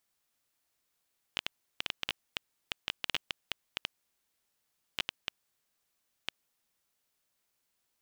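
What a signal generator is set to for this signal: random clicks 5.3/s -13.5 dBFS 5.19 s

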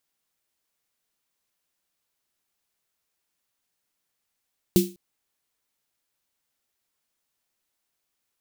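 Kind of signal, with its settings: snare drum length 0.20 s, tones 190 Hz, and 350 Hz, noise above 2800 Hz, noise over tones -9.5 dB, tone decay 0.29 s, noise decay 0.30 s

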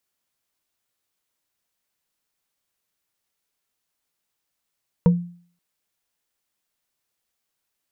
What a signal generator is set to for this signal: wood hit bar, length 0.53 s, lowest mode 174 Hz, modes 3, decay 0.48 s, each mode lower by 7.5 dB, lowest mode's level -9 dB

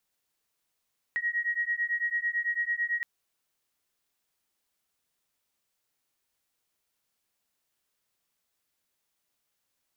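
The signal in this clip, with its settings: beating tones 1890 Hz, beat 9 Hz, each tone -30 dBFS 1.87 s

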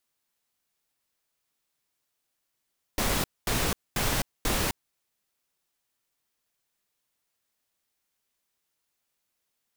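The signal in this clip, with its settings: noise bursts pink, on 0.26 s, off 0.23 s, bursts 4, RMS -26.5 dBFS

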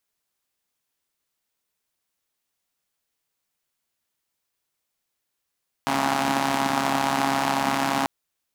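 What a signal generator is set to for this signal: four-cylinder engine model, steady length 2.19 s, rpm 4100, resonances 260/790 Hz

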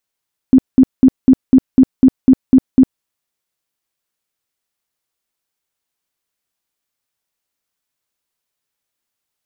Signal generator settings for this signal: tone bursts 261 Hz, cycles 14, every 0.25 s, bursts 10, -3 dBFS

